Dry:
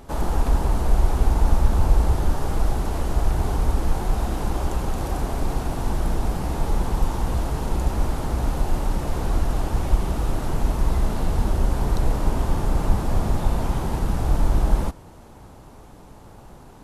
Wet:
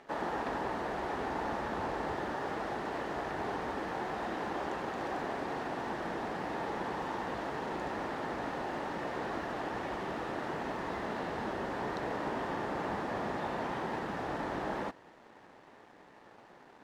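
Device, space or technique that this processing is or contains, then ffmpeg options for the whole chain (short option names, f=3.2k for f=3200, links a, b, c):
pocket radio on a weak battery: -af "highpass=300,lowpass=3.5k,aeval=exprs='sgn(val(0))*max(abs(val(0))-0.00141,0)':c=same,equalizer=f=1.8k:t=o:w=0.3:g=9,volume=-4dB"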